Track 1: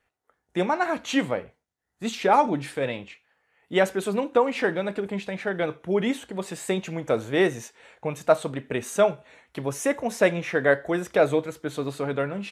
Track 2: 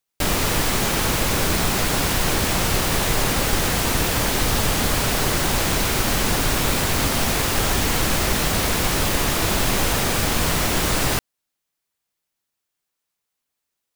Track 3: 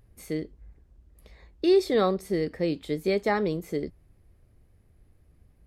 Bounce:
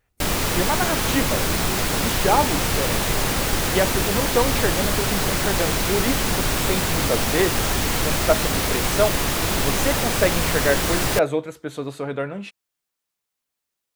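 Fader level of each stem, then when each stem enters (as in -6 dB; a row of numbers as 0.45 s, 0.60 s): 0.0 dB, -1.5 dB, -16.0 dB; 0.00 s, 0.00 s, 0.00 s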